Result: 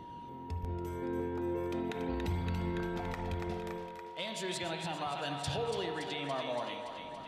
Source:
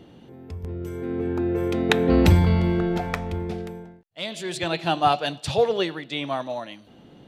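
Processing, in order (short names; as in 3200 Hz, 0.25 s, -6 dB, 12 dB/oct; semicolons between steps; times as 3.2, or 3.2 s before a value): compressor 3:1, threshold -29 dBFS, peak gain reduction 13 dB; thinning echo 0.284 s, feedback 68%, high-pass 360 Hz, level -8.5 dB; limiter -22.5 dBFS, peak gain reduction 8.5 dB; flange 0.37 Hz, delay 0.5 ms, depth 1.6 ms, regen +67%; whine 950 Hz -48 dBFS; spring tank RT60 1.6 s, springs 49 ms, chirp 30 ms, DRR 7 dB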